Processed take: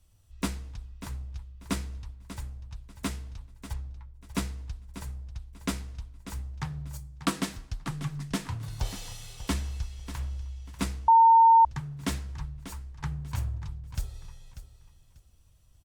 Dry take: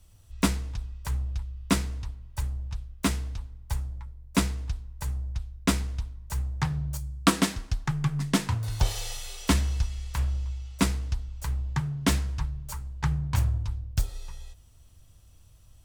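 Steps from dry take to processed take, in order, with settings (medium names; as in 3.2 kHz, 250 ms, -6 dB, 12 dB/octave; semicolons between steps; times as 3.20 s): 3.73–4.23 s: low-pass 4.9 kHz 12 dB/octave; feedback delay 591 ms, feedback 24%, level -12.5 dB; 11.08–11.65 s: bleep 910 Hz -6.5 dBFS; trim -7 dB; Opus 64 kbps 48 kHz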